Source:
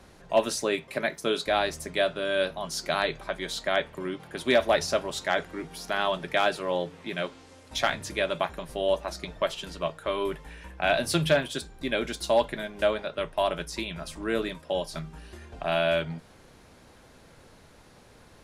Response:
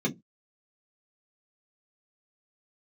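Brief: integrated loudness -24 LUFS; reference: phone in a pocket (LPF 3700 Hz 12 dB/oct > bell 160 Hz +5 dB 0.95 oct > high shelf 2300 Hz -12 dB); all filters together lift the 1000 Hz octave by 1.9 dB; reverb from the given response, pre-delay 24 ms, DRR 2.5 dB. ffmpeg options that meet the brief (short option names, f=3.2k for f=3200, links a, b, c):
-filter_complex "[0:a]equalizer=f=1k:t=o:g=5,asplit=2[a][b];[1:a]atrim=start_sample=2205,adelay=24[c];[b][c]afir=irnorm=-1:irlink=0,volume=-10.5dB[d];[a][d]amix=inputs=2:normalize=0,lowpass=3.7k,equalizer=f=160:t=o:w=0.95:g=5,highshelf=f=2.3k:g=-12"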